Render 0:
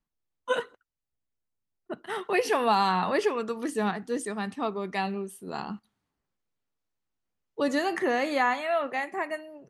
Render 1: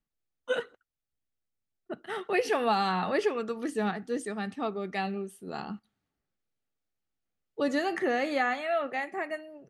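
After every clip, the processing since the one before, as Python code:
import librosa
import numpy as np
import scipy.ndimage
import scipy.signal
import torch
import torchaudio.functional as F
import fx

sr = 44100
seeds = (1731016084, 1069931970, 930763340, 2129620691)

y = fx.high_shelf(x, sr, hz=8200.0, db=-8.0)
y = fx.notch(y, sr, hz=1000.0, q=5.0)
y = y * librosa.db_to_amplitude(-1.5)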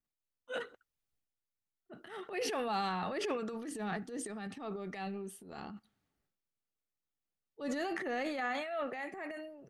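y = fx.transient(x, sr, attack_db=-9, sustain_db=9)
y = y * librosa.db_to_amplitude(-8.0)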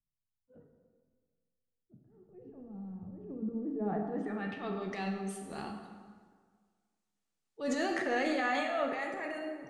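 y = fx.filter_sweep_lowpass(x, sr, from_hz=130.0, to_hz=8200.0, start_s=3.2, end_s=5.01, q=1.3)
y = fx.rev_plate(y, sr, seeds[0], rt60_s=1.7, hf_ratio=0.65, predelay_ms=0, drr_db=2.5)
y = y * librosa.db_to_amplitude(2.5)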